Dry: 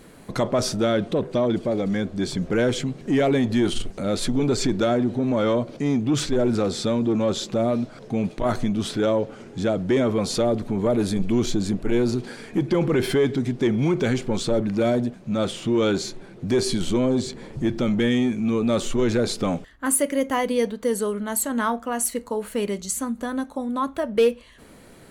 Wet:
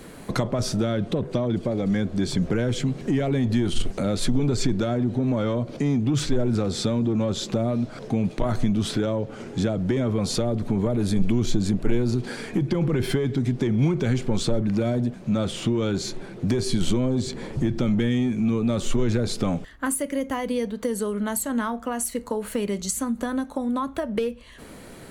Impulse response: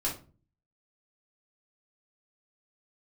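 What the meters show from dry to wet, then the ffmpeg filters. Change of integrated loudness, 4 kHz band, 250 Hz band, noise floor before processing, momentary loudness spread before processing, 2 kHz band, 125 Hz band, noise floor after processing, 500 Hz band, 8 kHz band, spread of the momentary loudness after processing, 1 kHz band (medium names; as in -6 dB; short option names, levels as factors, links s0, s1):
-1.5 dB, -2.0 dB, -1.0 dB, -47 dBFS, 6 LU, -3.5 dB, +3.5 dB, -42 dBFS, -4.5 dB, -3.0 dB, 5 LU, -4.0 dB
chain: -filter_complex "[0:a]acrossover=split=170[s0][s1];[s1]acompressor=threshold=0.0355:ratio=10[s2];[s0][s2]amix=inputs=2:normalize=0,volume=1.78"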